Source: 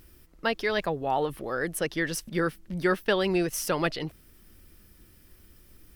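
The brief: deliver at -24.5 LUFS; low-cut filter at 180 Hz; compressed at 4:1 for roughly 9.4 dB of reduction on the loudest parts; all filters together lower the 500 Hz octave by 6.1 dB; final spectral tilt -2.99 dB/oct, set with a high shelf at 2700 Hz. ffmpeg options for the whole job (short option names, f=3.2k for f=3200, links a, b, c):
-af "highpass=180,equalizer=f=500:t=o:g=-8.5,highshelf=f=2.7k:g=8.5,acompressor=threshold=-33dB:ratio=4,volume=11.5dB"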